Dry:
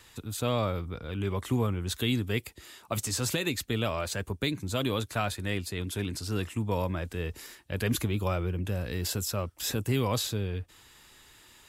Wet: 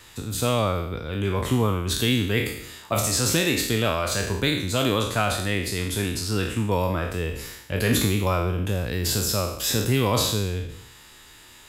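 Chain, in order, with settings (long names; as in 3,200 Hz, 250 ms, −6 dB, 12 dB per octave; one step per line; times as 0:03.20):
peak hold with a decay on every bin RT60 0.75 s
level +5 dB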